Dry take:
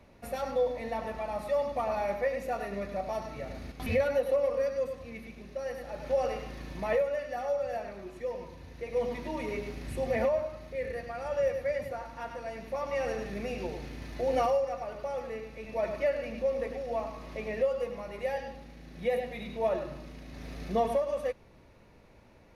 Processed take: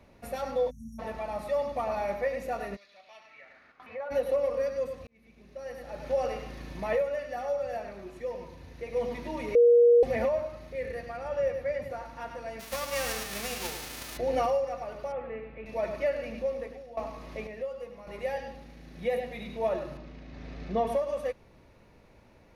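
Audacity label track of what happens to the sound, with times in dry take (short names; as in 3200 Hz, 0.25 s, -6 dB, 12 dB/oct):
0.700000	0.990000	spectral delete 240–5500 Hz
2.750000	4.100000	band-pass 4700 Hz -> 890 Hz, Q 2.5
5.070000	5.990000	fade in
9.550000	10.030000	bleep 476 Hz -15 dBFS
11.170000	11.900000	high shelf 4100 Hz -6.5 dB
12.590000	14.160000	spectral whitening exponent 0.3
15.120000	15.660000	LPF 2700 Hz 24 dB/oct
16.350000	16.970000	fade out, to -15.5 dB
17.470000	18.070000	gain -7.5 dB
19.970000	20.870000	air absorption 130 m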